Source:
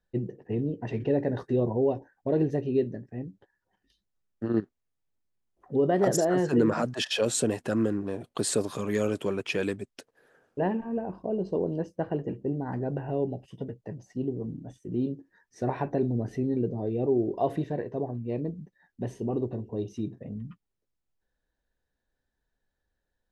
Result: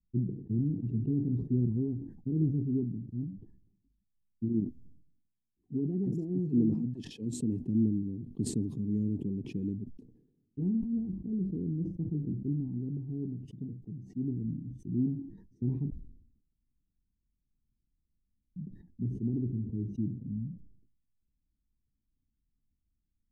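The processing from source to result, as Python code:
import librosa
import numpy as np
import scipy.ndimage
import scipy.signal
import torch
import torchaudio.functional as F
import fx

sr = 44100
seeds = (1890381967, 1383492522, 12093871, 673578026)

y = fx.low_shelf(x, sr, hz=110.0, db=-9.0, at=(4.49, 7.6))
y = fx.low_shelf(y, sr, hz=110.0, db=-10.5, at=(12.68, 14.24))
y = fx.edit(y, sr, fx.room_tone_fill(start_s=15.9, length_s=2.66), tone=tone)
y = scipy.signal.sosfilt(scipy.signal.cheby2(4, 40, 550.0, 'lowpass', fs=sr, output='sos'), y)
y = fx.sustainer(y, sr, db_per_s=74.0)
y = y * 10.0 ** (1.5 / 20.0)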